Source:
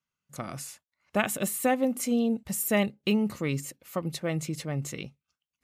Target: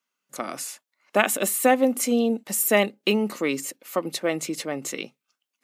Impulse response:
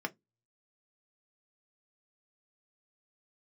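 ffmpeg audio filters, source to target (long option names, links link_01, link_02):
-af "highpass=frequency=250:width=0.5412,highpass=frequency=250:width=1.3066,volume=7dB"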